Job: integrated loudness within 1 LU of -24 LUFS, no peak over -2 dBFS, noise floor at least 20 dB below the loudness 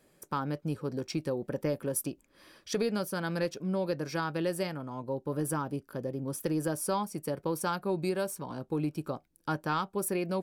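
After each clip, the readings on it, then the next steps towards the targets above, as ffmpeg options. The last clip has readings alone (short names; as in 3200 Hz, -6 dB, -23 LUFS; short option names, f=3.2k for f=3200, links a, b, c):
loudness -33.5 LUFS; peak -19.0 dBFS; loudness target -24.0 LUFS
-> -af "volume=9.5dB"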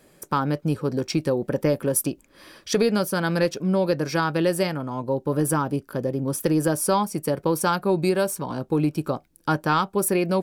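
loudness -24.0 LUFS; peak -9.5 dBFS; noise floor -58 dBFS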